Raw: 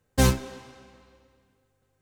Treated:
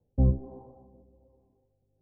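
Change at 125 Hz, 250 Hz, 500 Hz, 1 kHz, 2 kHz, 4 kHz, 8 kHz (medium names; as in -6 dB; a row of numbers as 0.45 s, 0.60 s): -0.5 dB, -4.5 dB, -9.0 dB, -16.5 dB, under -40 dB, under -40 dB, under -40 dB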